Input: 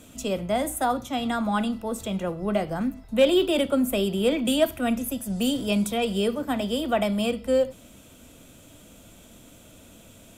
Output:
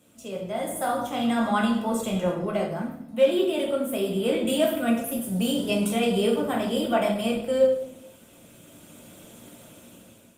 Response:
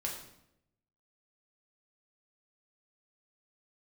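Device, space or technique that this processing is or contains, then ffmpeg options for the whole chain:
far-field microphone of a smart speaker: -filter_complex "[1:a]atrim=start_sample=2205[a];[0:a][a]afir=irnorm=-1:irlink=0,highpass=140,dynaudnorm=f=330:g=5:m=12dB,volume=-8.5dB" -ar 48000 -c:a libopus -b:a 32k

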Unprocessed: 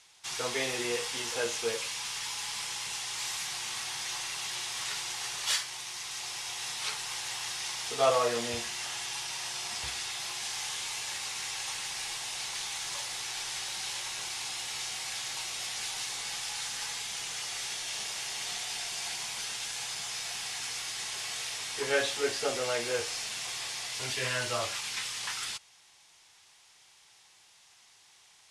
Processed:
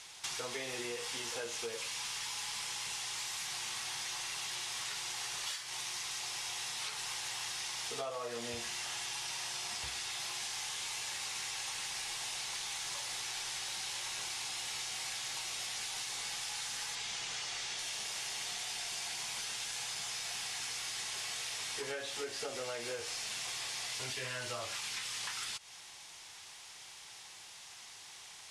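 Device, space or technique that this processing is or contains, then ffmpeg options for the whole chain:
serial compression, peaks first: -filter_complex "[0:a]asettb=1/sr,asplit=3[a][b][c];[a]atrim=end=16.954[d];[b]atrim=start=16.95:end=17.79,asetpts=PTS-STARTPTS,afade=t=in:d=0.004:c=qsin,afade=t=out:st=0.836:d=0.004:c=qsin,lowpass=7.3k[e];[c]atrim=start=17.786[f];[d][e]acrossfade=d=0.004:c1=hsin:c2=qsin[g];[g][f]acrossfade=d=0.004:c1=qsin:c2=hsin,acompressor=threshold=-40dB:ratio=6,acompressor=threshold=-49dB:ratio=2,volume=8dB"

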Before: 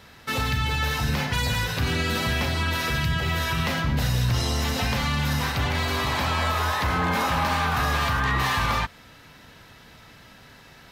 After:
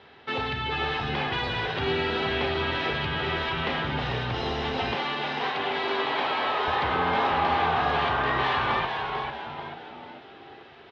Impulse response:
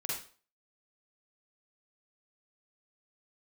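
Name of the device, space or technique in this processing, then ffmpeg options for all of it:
frequency-shifting delay pedal into a guitar cabinet: -filter_complex "[0:a]asplit=6[a][b][c][d][e][f];[b]adelay=443,afreqshift=-100,volume=-5dB[g];[c]adelay=886,afreqshift=-200,volume=-12.1dB[h];[d]adelay=1329,afreqshift=-300,volume=-19.3dB[i];[e]adelay=1772,afreqshift=-400,volume=-26.4dB[j];[f]adelay=2215,afreqshift=-500,volume=-33.5dB[k];[a][g][h][i][j][k]amix=inputs=6:normalize=0,highpass=110,equalizer=f=120:t=q:w=4:g=-4,equalizer=f=190:t=q:w=4:g=-6,equalizer=f=400:t=q:w=4:g=10,equalizer=f=790:t=q:w=4:g=7,equalizer=f=3.2k:t=q:w=4:g=4,lowpass=f=3.7k:w=0.5412,lowpass=f=3.7k:w=1.3066,asettb=1/sr,asplit=3[l][m][n];[l]atrim=end=4.954[o];[m]atrim=start=4.95:end=6.68,asetpts=PTS-STARTPTS,afade=t=in:d=0.004:c=qsin,afade=t=out:st=1.726:d=0.004:c=qsin,highpass=270[p];[n]atrim=start=6.676[q];[o][p]acrossfade=d=0.004:c1=hsin:c2=qsin[r];[r][q]acrossfade=d=0.004:c1=qsin:c2=hsin,volume=-3.5dB"

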